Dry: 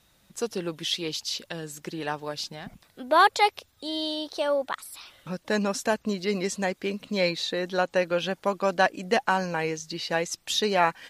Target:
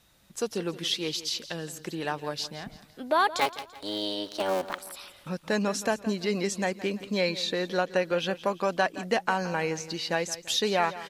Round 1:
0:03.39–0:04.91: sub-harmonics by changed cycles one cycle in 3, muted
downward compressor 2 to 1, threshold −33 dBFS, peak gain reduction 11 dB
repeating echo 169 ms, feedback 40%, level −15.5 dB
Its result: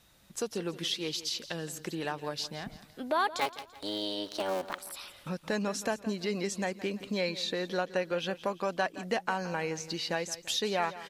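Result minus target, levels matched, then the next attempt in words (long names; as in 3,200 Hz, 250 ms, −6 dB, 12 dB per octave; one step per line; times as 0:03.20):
downward compressor: peak gain reduction +5 dB
0:03.39–0:04.91: sub-harmonics by changed cycles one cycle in 3, muted
downward compressor 2 to 1, threshold −23 dBFS, peak gain reduction 6 dB
repeating echo 169 ms, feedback 40%, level −15.5 dB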